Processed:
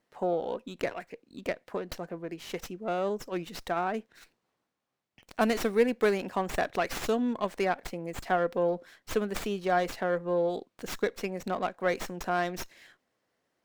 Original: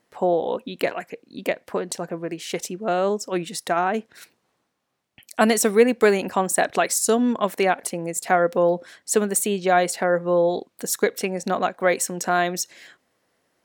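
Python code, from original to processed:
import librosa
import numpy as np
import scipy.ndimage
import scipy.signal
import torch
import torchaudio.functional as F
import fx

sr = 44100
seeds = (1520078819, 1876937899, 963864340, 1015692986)

y = fx.tracing_dist(x, sr, depth_ms=0.088)
y = fx.running_max(y, sr, window=3)
y = y * 10.0 ** (-8.5 / 20.0)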